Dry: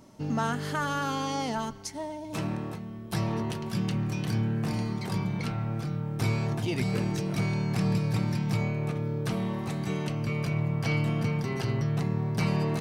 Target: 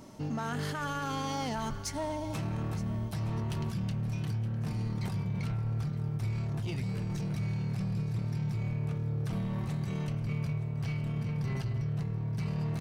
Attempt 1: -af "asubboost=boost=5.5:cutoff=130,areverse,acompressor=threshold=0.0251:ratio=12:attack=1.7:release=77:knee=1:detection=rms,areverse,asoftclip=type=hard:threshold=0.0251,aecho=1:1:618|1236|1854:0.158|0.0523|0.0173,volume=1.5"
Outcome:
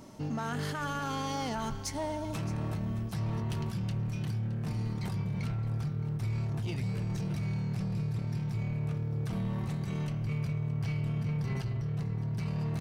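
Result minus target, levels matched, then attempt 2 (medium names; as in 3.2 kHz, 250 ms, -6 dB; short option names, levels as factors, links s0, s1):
echo 301 ms early
-af "asubboost=boost=5.5:cutoff=130,areverse,acompressor=threshold=0.0251:ratio=12:attack=1.7:release=77:knee=1:detection=rms,areverse,asoftclip=type=hard:threshold=0.0251,aecho=1:1:919|1838|2757:0.158|0.0523|0.0173,volume=1.5"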